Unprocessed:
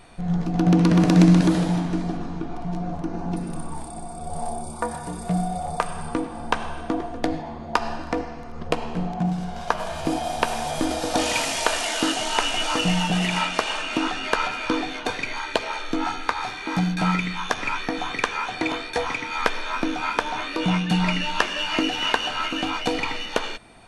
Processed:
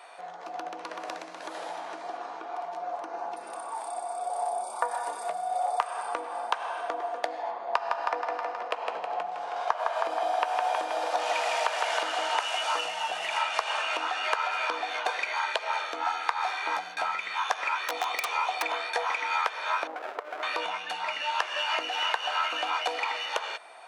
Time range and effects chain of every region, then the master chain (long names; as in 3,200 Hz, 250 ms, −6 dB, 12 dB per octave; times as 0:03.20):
0:07.51–0:12.38: low-pass filter 3,500 Hz 6 dB per octave + feedback echo with a high-pass in the loop 159 ms, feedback 64%, high-pass 190 Hz, level −5 dB
0:17.88–0:18.63: parametric band 1,600 Hz −13 dB 0.33 octaves + wrap-around overflow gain 18.5 dB
0:19.87–0:20.43: low-pass with resonance 670 Hz, resonance Q 1.8 + windowed peak hold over 33 samples
whole clip: downward compressor 12 to 1, threshold −26 dBFS; high-pass filter 610 Hz 24 dB per octave; high-shelf EQ 2,100 Hz −9.5 dB; level +6.5 dB